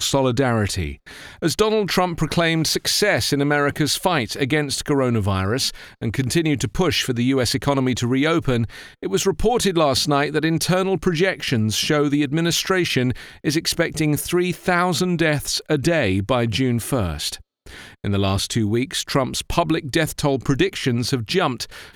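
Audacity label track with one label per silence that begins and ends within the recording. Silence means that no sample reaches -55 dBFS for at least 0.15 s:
17.420000	17.660000	silence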